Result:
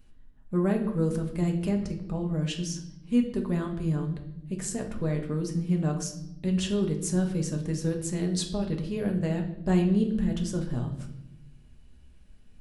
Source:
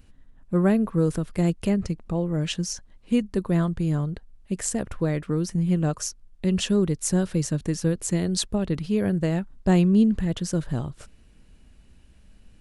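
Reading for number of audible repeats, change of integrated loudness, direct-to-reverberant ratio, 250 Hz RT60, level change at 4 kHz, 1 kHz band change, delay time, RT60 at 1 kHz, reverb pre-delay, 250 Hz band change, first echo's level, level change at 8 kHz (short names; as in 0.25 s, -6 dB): none, -4.0 dB, 2.0 dB, 1.4 s, -5.0 dB, -5.0 dB, none, 0.70 s, 5 ms, -4.0 dB, none, -5.5 dB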